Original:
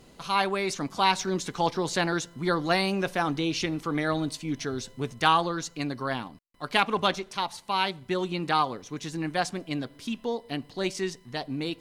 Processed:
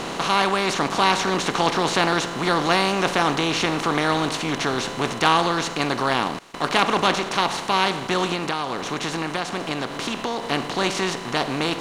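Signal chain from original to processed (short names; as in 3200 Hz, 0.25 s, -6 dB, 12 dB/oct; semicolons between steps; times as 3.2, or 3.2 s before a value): per-bin compression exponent 0.4; 8.33–10.43 compressor, threshold -22 dBFS, peak gain reduction 8 dB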